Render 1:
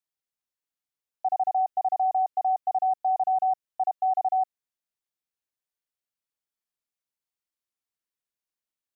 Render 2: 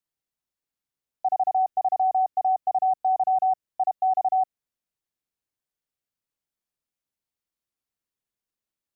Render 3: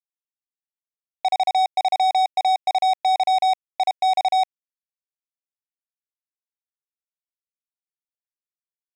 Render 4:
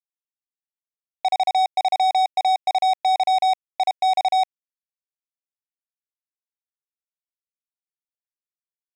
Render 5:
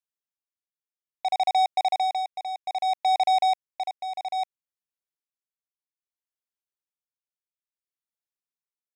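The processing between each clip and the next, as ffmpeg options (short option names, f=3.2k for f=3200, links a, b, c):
-af "lowshelf=f=450:g=7.5"
-af "acrusher=bits=3:mix=0:aa=0.5,volume=2dB"
-af anull
-af "tremolo=f=0.61:d=0.73,volume=-2dB"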